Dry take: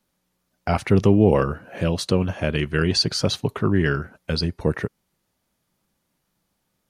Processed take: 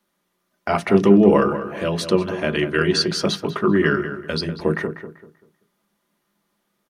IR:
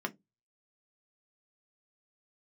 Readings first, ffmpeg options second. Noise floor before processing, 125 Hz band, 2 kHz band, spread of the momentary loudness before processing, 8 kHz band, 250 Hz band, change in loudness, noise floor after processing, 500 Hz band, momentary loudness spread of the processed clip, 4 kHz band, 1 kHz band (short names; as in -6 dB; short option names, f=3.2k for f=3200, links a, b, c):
-75 dBFS, -3.5 dB, +4.0 dB, 10 LU, 0.0 dB, +3.5 dB, +2.5 dB, -73 dBFS, +4.0 dB, 12 LU, 0.0 dB, +4.5 dB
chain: -filter_complex "[0:a]equalizer=f=230:w=4.5:g=-6,asplit=2[a][b];[b]adelay=194,lowpass=f=2.4k:p=1,volume=-10dB,asplit=2[c][d];[d]adelay=194,lowpass=f=2.4k:p=1,volume=0.32,asplit=2[e][f];[f]adelay=194,lowpass=f=2.4k:p=1,volume=0.32,asplit=2[g][h];[h]adelay=194,lowpass=f=2.4k:p=1,volume=0.32[i];[a][c][e][g][i]amix=inputs=5:normalize=0,asplit=2[j][k];[1:a]atrim=start_sample=2205[l];[k][l]afir=irnorm=-1:irlink=0,volume=-0.5dB[m];[j][m]amix=inputs=2:normalize=0,volume=-3.5dB"